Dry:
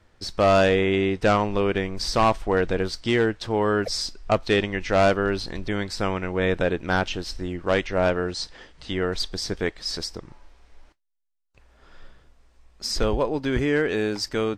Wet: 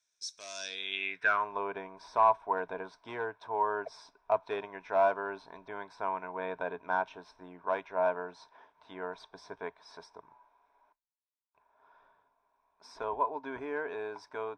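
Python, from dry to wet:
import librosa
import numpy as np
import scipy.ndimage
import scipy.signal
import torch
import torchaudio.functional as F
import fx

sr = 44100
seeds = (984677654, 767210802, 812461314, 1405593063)

y = fx.filter_sweep_bandpass(x, sr, from_hz=6500.0, to_hz=910.0, start_s=0.55, end_s=1.57, q=4.1)
y = fx.ripple_eq(y, sr, per_octave=1.6, db=10)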